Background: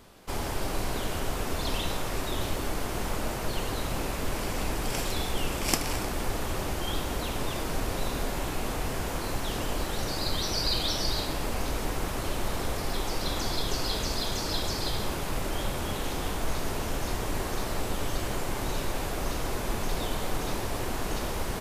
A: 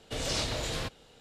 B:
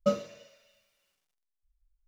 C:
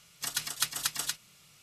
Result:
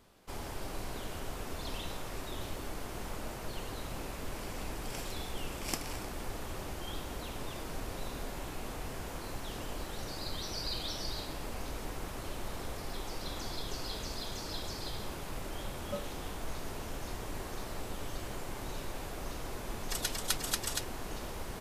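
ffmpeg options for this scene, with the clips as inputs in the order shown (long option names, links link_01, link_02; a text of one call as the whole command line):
ffmpeg -i bed.wav -i cue0.wav -i cue1.wav -i cue2.wav -filter_complex "[0:a]volume=-9.5dB[link_01];[2:a]atrim=end=2.07,asetpts=PTS-STARTPTS,volume=-13.5dB,afade=type=in:duration=0.004:curve=hsin,afade=type=out:start_time=2.066:duration=0.004:curve=hsin,adelay=15860[link_02];[3:a]atrim=end=1.62,asetpts=PTS-STARTPTS,volume=-3dB,afade=type=in:duration=0.004:curve=hsin,afade=type=out:start_time=1.616:duration=0.004:curve=hsin,adelay=19680[link_03];[link_01][link_02][link_03]amix=inputs=3:normalize=0" out.wav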